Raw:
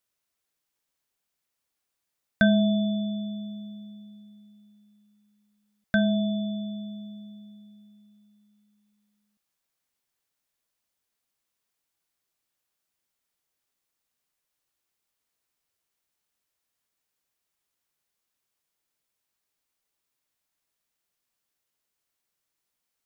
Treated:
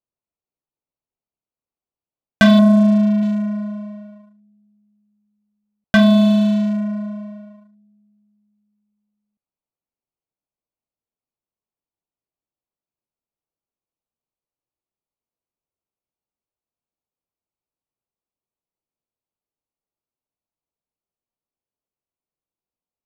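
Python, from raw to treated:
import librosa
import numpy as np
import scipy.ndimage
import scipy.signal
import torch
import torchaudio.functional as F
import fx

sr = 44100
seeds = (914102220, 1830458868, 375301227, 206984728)

y = fx.wiener(x, sr, points=25)
y = fx.lowpass(y, sr, hz=1200.0, slope=12, at=(2.59, 3.23))
y = fx.leveller(y, sr, passes=3)
y = y * librosa.db_to_amplitude(3.5)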